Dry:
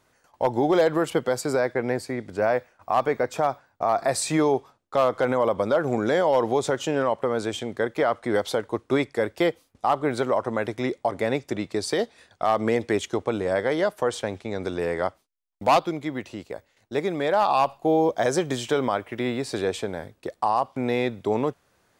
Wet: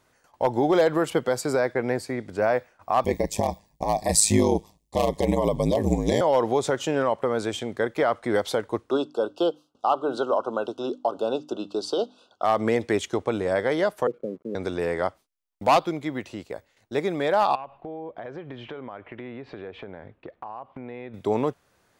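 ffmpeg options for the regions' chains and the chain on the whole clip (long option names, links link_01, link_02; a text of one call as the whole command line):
ffmpeg -i in.wav -filter_complex "[0:a]asettb=1/sr,asplit=3[link_01][link_02][link_03];[link_01]atrim=end=3.044[link_04];[link_02]atrim=start=3.04:end=6.21,asetpts=PTS-STARTPTS,afade=type=in:duration=0.004:curve=qsin,afade=type=out:start_time=3.166:duration=0.004:curve=qsin,bass=frequency=250:gain=13,treble=frequency=4000:gain=13,aeval=exprs='val(0)*sin(2*PI*53*n/s)':channel_layout=same,asuperstop=centerf=1400:order=8:qfactor=2.2[link_05];[link_03]atrim=start=6.206[link_06];[link_04][link_05]acrossfade=duration=0.004:curve1=hsin:curve2=qsin[link_07];[link_07][link_06]acrossfade=duration=0.004:curve1=qsin:curve2=hsin,asettb=1/sr,asplit=3[link_08][link_09][link_10];[link_08]atrim=end=8.904[link_11];[link_09]atrim=start=8.9:end=12.44,asetpts=PTS-STARTPTS,afade=type=in:duration=0.004:curve=qsin,afade=type=out:start_time=3.536:duration=0.004:curve=qsin,asuperstop=centerf=2000:order=20:qfactor=1.8,acrossover=split=220 5900:gain=0.112 1 0.178[link_12][link_13][link_14];[link_12][link_13][link_14]amix=inputs=3:normalize=0,bandreject=frequency=50:width_type=h:width=6,bandreject=frequency=100:width_type=h:width=6,bandreject=frequency=150:width_type=h:width=6,bandreject=frequency=200:width_type=h:width=6,bandreject=frequency=250:width_type=h:width=6,bandreject=frequency=300:width_type=h:width=6[link_15];[link_10]atrim=start=12.436[link_16];[link_11][link_15]acrossfade=duration=0.004:curve1=hsin:curve2=qsin[link_17];[link_17][link_16]acrossfade=duration=0.004:curve1=qsin:curve2=hsin,asettb=1/sr,asplit=3[link_18][link_19][link_20];[link_18]atrim=end=14.074[link_21];[link_19]atrim=start=14.07:end=14.55,asetpts=PTS-STARTPTS,afade=type=in:duration=0.004:curve=qsin,afade=type=out:start_time=0.476:duration=0.004:curve=qsin,asuperpass=centerf=270:order=12:qfactor=0.66,aeval=exprs='sgn(val(0))*max(abs(val(0))-0.00112,0)':channel_layout=same[link_22];[link_20]atrim=start=14.546[link_23];[link_21][link_22]acrossfade=duration=0.004:curve1=hsin:curve2=qsin[link_24];[link_24][link_23]acrossfade=duration=0.004:curve1=qsin:curve2=hsin,asettb=1/sr,asplit=3[link_25][link_26][link_27];[link_25]atrim=end=17.554[link_28];[link_26]atrim=start=17.55:end=21.14,asetpts=PTS-STARTPTS,afade=type=in:duration=0.004:curve=qsin,afade=type=out:start_time=3.586:duration=0.004:curve=qsin,lowpass=frequency=2800:width=0.5412,lowpass=frequency=2800:width=1.3066,acompressor=threshold=-36dB:ratio=4:attack=3.2:release=140:knee=1:detection=peak[link_29];[link_27]atrim=start=21.136[link_30];[link_28][link_29]acrossfade=duration=0.004:curve1=hsin:curve2=qsin[link_31];[link_31][link_30]acrossfade=duration=0.004:curve1=qsin:curve2=hsin" out.wav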